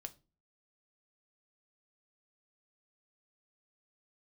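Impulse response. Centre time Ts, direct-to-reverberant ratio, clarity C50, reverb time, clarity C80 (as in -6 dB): 4 ms, 8.5 dB, 19.5 dB, 0.30 s, 25.5 dB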